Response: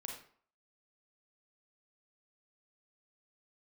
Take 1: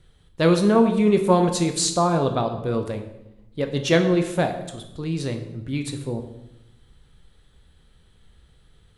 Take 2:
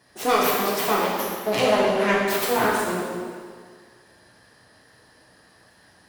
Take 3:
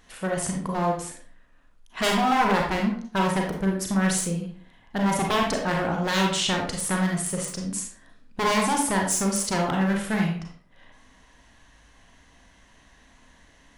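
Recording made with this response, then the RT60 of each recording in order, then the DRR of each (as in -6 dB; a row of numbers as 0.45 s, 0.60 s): 3; 0.90 s, 1.8 s, 0.55 s; 5.5 dB, -5.0 dB, 0.0 dB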